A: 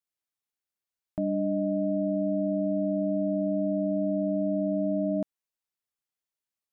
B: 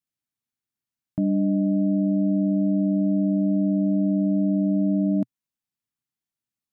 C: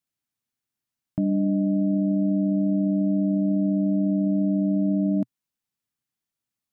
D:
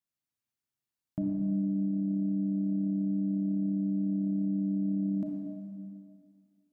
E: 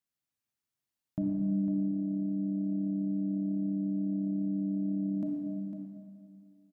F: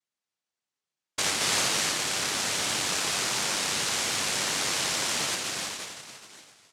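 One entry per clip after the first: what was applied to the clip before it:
octave-band graphic EQ 125/250/500 Hz +11/+9/−6 dB; level −1 dB
brickwall limiter −18.5 dBFS, peak gain reduction 4 dB; level +2.5 dB
convolution reverb RT60 2.2 s, pre-delay 30 ms, DRR 0.5 dB; level −7.5 dB
single-tap delay 503 ms −9.5 dB
cochlear-implant simulation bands 1; level +3 dB

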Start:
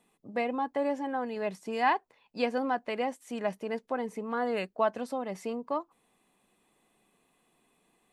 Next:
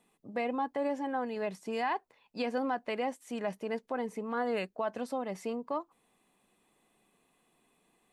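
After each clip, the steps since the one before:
brickwall limiter −22.5 dBFS, peak gain reduction 8 dB
level −1 dB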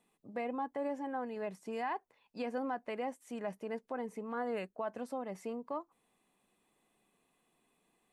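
dynamic equaliser 4,000 Hz, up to −7 dB, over −57 dBFS, Q 1.1
level −4.5 dB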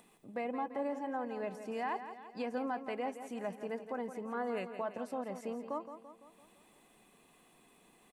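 upward compression, threshold −54 dBFS
on a send: repeating echo 169 ms, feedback 53%, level −10.5 dB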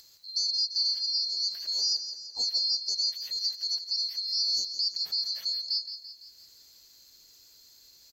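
neighbouring bands swapped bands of 4,000 Hz
level +8.5 dB

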